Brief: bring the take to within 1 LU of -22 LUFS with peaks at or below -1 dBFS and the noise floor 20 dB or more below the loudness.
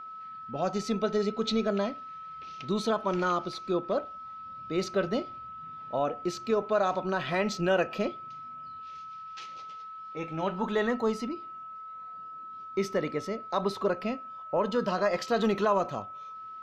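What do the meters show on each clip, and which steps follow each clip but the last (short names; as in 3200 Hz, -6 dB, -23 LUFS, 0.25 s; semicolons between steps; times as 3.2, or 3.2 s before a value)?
steady tone 1300 Hz; tone level -40 dBFS; loudness -30.0 LUFS; peak -13.5 dBFS; loudness target -22.0 LUFS
-> notch 1300 Hz, Q 30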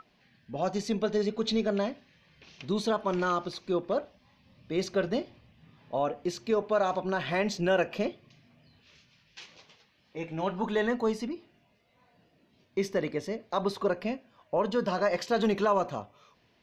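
steady tone none; loudness -30.5 LUFS; peak -14.0 dBFS; loudness target -22.0 LUFS
-> gain +8.5 dB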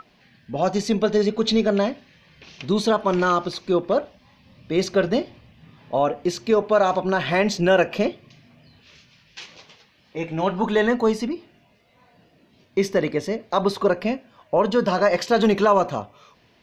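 loudness -22.0 LUFS; peak -5.5 dBFS; noise floor -59 dBFS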